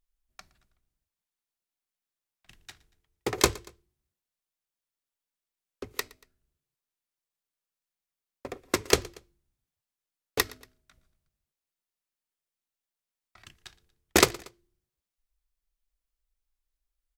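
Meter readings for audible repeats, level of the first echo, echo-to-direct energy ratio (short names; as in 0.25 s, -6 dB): 2, -23.0 dB, -22.0 dB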